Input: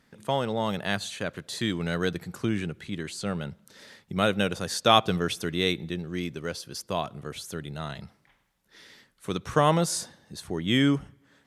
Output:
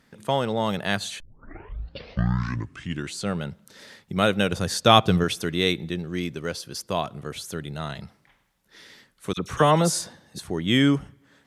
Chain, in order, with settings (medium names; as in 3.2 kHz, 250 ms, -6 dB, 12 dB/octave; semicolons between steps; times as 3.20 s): 1.20 s: tape start 2.00 s; 4.52–5.24 s: bass shelf 150 Hz +10 dB; 9.33–10.39 s: phase dispersion lows, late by 42 ms, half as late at 2 kHz; trim +3 dB